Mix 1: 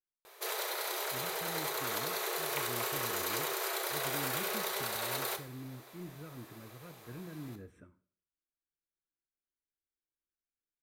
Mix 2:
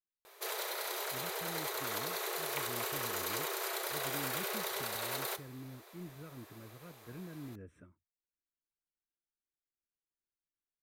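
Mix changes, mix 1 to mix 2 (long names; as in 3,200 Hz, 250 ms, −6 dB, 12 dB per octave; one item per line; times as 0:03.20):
speech: send off
background: send −8.5 dB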